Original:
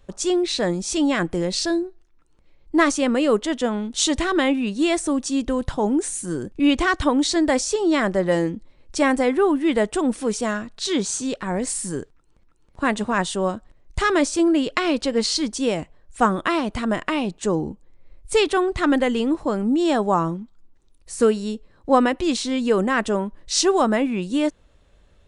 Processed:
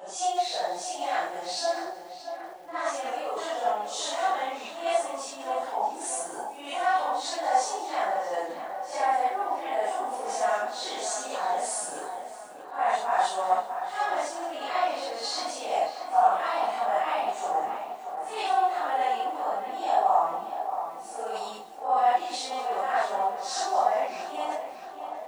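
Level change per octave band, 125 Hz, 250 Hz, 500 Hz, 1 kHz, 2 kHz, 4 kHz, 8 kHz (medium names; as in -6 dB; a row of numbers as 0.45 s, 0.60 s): under -30 dB, -25.0 dB, -8.5 dB, +2.5 dB, -8.5 dB, -8.5 dB, -8.0 dB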